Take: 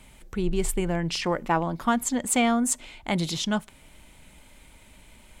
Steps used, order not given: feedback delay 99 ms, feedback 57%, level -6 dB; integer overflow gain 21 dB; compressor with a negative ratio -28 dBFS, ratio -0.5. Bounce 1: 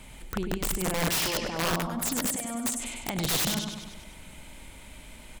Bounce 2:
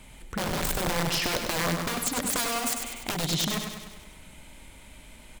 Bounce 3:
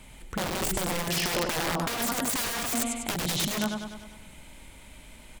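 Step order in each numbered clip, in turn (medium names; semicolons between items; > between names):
compressor with a negative ratio > feedback delay > integer overflow; integer overflow > compressor with a negative ratio > feedback delay; feedback delay > integer overflow > compressor with a negative ratio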